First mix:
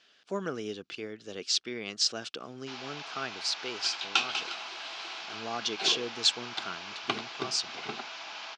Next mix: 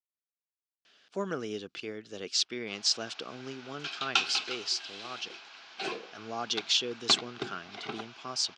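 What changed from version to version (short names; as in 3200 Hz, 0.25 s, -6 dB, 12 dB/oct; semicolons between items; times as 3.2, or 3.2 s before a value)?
speech: entry +0.85 s; first sound -11.0 dB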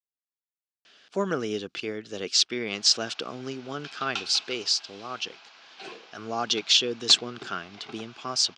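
speech +6.5 dB; second sound -6.5 dB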